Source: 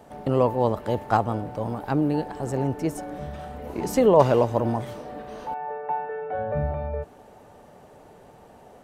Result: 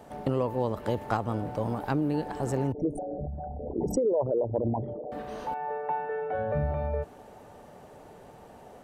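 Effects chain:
0:02.72–0:05.12: spectral envelope exaggerated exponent 3
dynamic equaliser 750 Hz, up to −4 dB, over −32 dBFS, Q 2.1
downward compressor 6 to 1, threshold −23 dBFS, peak gain reduction 10 dB

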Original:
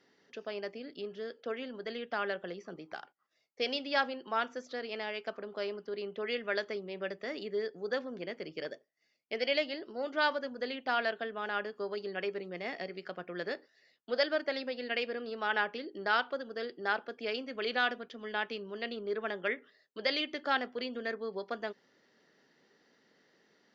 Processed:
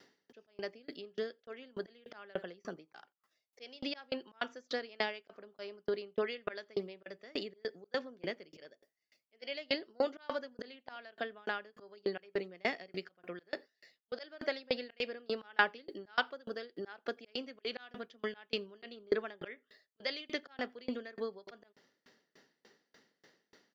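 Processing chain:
high-shelf EQ 4,100 Hz +5 dB
0:10.76–0:12.06: downward compressor 2.5 to 1, threshold −36 dBFS, peak gain reduction 7.5 dB
volume swells 241 ms
slap from a distant wall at 15 metres, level −25 dB
tremolo with a ramp in dB decaying 3.4 Hz, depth 32 dB
level +8 dB

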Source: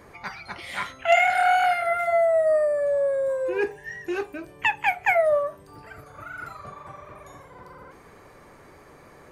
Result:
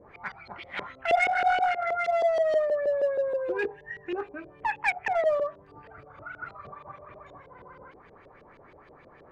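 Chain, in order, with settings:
0:02.04–0:02.56: spike at every zero crossing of −19.5 dBFS
auto-filter low-pass saw up 6.3 Hz 430–3,800 Hz
in parallel at −11.5 dB: wave folding −17.5 dBFS
on the sum: downsampling to 22,050 Hz
level −8 dB

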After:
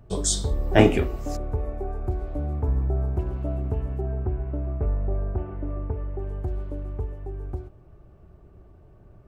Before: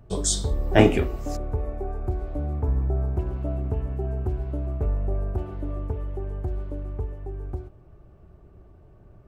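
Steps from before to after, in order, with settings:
0:04.01–0:06.19: low-pass filter 2,500 Hz 24 dB per octave

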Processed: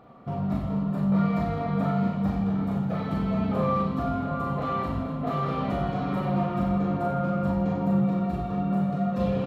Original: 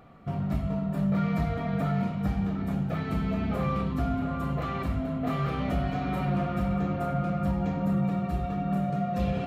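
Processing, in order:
octave-band graphic EQ 125/250/500/1,000/4,000 Hz +5/+7/+7/+10/+6 dB
on a send: reverse bouncing-ball delay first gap 40 ms, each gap 1.3×, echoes 5
on the sum: level −8 dB

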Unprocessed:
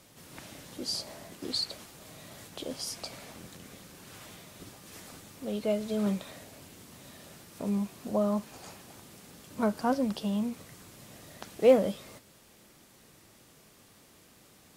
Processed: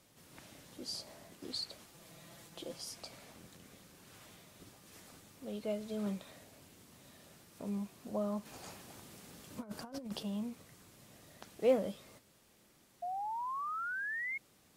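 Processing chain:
0:01.93–0:02.78: comb filter 5.9 ms, depth 60%
0:08.45–0:10.23: compressor whose output falls as the input rises −33 dBFS, ratio −0.5
0:13.02–0:14.38: sound drawn into the spectrogram rise 690–2,200 Hz −30 dBFS
level −8.5 dB

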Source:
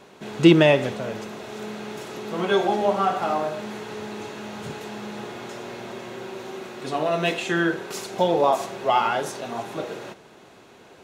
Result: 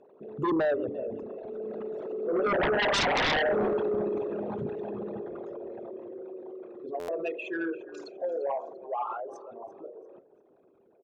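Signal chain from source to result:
spectral envelope exaggerated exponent 3
source passing by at 0:03.43, 7 m/s, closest 2.9 metres
low-pass filter 7,300 Hz
on a send: echo with shifted repeats 344 ms, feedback 35%, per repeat −35 Hz, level −19 dB
on the sum: sine wavefolder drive 15 dB, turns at −14.5 dBFS
buffer that repeats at 0:06.99, samples 512, times 7
level −8 dB

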